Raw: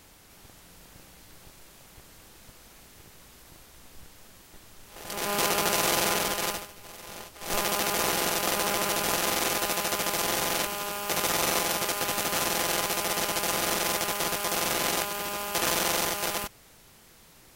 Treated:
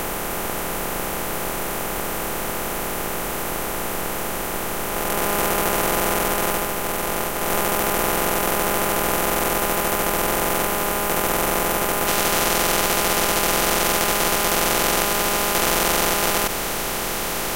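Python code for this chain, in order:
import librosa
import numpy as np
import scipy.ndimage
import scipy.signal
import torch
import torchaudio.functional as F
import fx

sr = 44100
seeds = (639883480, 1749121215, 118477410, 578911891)

y = fx.bin_compress(x, sr, power=0.2)
y = fx.peak_eq(y, sr, hz=4600.0, db=fx.steps((0.0, -11.0), (12.07, -3.5)), octaves=1.7)
y = y * librosa.db_to_amplitude(2.5)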